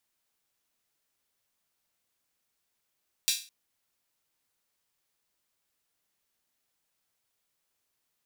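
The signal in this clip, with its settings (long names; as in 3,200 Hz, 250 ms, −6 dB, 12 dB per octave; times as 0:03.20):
open synth hi-hat length 0.21 s, high-pass 3,500 Hz, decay 0.35 s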